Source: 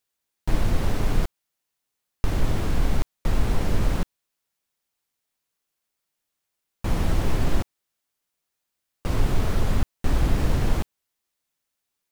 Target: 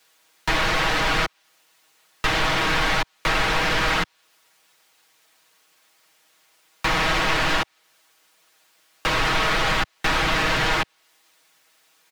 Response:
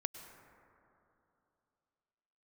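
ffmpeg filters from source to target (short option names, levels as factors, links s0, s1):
-filter_complex "[0:a]asplit=2[s0][s1];[s1]highpass=f=720:p=1,volume=22.4,asoftclip=type=tanh:threshold=0.422[s2];[s0][s2]amix=inputs=2:normalize=0,lowpass=f=3600:p=1,volume=0.501,acrossover=split=700|5500[s3][s4][s5];[s3]acompressor=threshold=0.0355:ratio=4[s6];[s4]acompressor=threshold=0.0631:ratio=4[s7];[s5]acompressor=threshold=0.00282:ratio=4[s8];[s6][s7][s8]amix=inputs=3:normalize=0,aecho=1:1:6.3:0.78,acrossover=split=110|1200[s9][s10][s11];[s10]asoftclip=type=tanh:threshold=0.0355[s12];[s9][s12][s11]amix=inputs=3:normalize=0,volume=1.5"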